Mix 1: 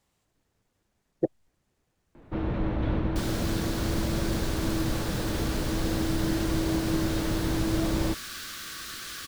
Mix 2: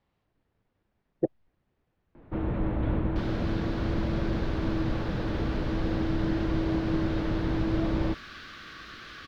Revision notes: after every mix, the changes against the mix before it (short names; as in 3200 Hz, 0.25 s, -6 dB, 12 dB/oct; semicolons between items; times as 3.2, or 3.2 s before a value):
master: add air absorption 280 m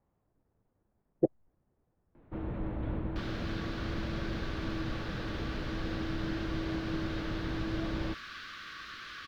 speech: add LPF 1100 Hz 12 dB/oct; first sound -7.5 dB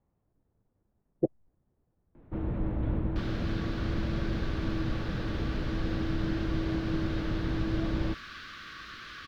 speech -3.5 dB; master: add low shelf 380 Hz +6 dB